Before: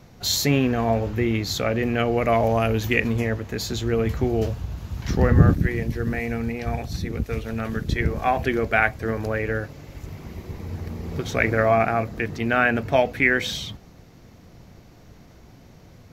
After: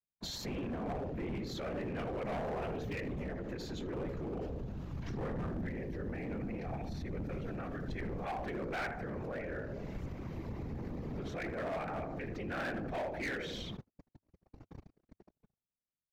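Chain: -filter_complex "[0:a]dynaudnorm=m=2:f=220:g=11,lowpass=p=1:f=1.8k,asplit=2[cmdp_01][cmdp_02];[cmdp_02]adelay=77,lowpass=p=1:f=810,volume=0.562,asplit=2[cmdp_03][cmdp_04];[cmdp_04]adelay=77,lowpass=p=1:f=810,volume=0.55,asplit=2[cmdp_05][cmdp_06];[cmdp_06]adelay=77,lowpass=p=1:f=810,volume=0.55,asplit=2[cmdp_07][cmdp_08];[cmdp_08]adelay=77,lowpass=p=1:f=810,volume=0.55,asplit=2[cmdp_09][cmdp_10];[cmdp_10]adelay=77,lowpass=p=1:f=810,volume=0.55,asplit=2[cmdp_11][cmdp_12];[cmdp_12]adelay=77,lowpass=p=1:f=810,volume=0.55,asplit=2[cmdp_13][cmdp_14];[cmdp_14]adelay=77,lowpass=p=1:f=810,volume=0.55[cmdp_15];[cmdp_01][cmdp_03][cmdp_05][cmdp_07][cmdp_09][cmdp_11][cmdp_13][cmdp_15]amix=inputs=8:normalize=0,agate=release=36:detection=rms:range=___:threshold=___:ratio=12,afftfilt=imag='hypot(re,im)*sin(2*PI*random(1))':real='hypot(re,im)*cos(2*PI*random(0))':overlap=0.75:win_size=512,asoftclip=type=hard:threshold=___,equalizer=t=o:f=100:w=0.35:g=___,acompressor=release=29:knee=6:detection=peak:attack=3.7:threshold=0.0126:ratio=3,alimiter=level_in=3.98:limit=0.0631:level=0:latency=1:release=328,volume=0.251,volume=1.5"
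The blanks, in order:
0.00178, 0.0112, 0.075, -4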